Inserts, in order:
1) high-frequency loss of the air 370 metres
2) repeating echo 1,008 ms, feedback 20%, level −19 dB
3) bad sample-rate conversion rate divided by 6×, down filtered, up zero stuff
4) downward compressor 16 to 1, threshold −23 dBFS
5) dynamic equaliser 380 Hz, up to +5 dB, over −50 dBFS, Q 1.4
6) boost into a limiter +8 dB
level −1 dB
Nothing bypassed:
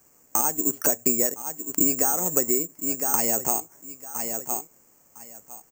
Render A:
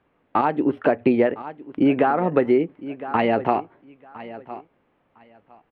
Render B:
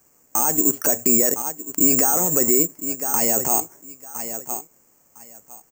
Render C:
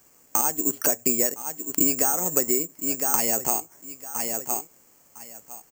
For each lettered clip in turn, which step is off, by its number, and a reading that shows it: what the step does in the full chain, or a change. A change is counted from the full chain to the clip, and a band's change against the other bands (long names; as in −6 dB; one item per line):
3, 4 kHz band −10.0 dB
4, average gain reduction 8.5 dB
1, 4 kHz band +3.5 dB